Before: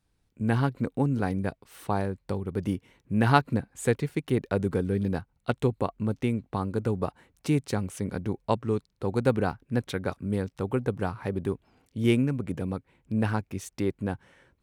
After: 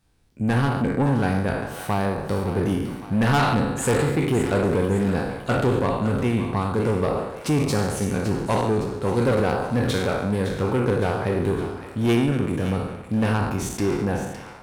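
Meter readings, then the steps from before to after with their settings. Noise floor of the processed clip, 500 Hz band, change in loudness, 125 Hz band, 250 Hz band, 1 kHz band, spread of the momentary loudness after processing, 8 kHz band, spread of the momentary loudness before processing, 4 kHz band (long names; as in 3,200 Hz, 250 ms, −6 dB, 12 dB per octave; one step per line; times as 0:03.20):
−39 dBFS, +6.5 dB, +6.0 dB, +5.5 dB, +5.5 dB, +6.0 dB, 5 LU, +10.0 dB, 8 LU, +8.0 dB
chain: peak hold with a decay on every bin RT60 0.87 s
soft clipping −22 dBFS, distortion −10 dB
echo with a time of its own for lows and highs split 670 Hz, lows 85 ms, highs 561 ms, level −10.5 dB
level +6.5 dB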